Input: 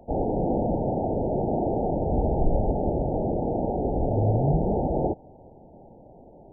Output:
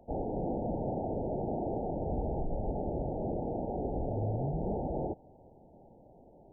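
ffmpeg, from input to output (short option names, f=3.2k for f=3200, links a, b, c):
-af "alimiter=limit=-17dB:level=0:latency=1:release=82,volume=-8dB"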